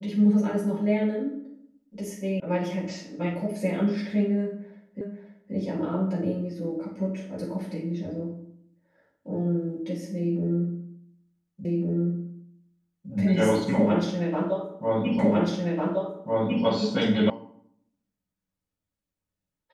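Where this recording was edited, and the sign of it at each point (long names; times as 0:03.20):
0:02.40: cut off before it has died away
0:05.01: the same again, the last 0.53 s
0:11.65: the same again, the last 1.46 s
0:15.19: the same again, the last 1.45 s
0:17.30: cut off before it has died away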